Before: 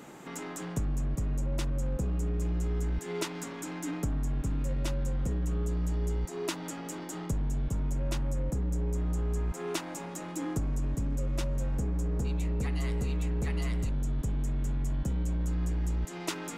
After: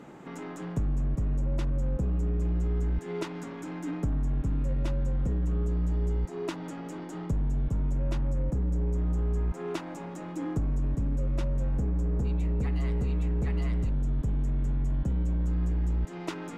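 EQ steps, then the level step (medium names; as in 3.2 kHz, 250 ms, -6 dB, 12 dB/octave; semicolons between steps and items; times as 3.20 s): low-pass 2 kHz 6 dB/octave; bass shelf 320 Hz +3 dB; 0.0 dB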